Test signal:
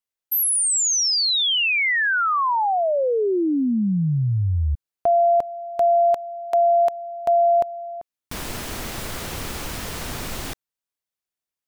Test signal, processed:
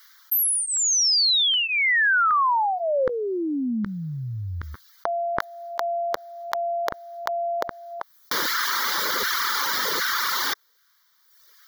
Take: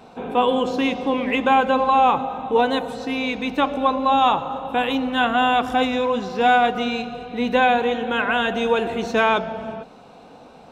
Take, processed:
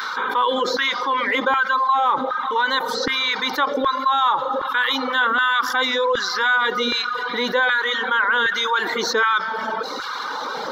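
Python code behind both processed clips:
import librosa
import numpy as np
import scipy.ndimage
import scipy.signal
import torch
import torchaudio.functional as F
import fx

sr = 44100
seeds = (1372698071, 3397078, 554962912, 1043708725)

y = fx.dereverb_blind(x, sr, rt60_s=0.85)
y = fx.filter_lfo_highpass(y, sr, shape='saw_down', hz=1.3, low_hz=490.0, high_hz=1500.0, q=1.8)
y = fx.fixed_phaser(y, sr, hz=2600.0, stages=6)
y = fx.env_flatten(y, sr, amount_pct=70)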